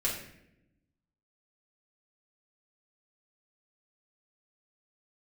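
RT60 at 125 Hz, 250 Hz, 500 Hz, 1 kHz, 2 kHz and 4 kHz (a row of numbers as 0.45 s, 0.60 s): 1.4 s, 1.4 s, 0.95 s, 0.65 s, 0.80 s, 0.55 s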